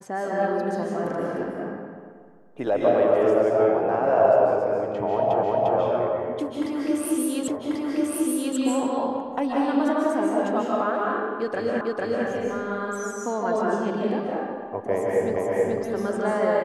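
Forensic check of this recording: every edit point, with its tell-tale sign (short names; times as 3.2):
5.43 repeat of the last 0.35 s
7.48 repeat of the last 1.09 s
11.81 repeat of the last 0.45 s
15.36 repeat of the last 0.43 s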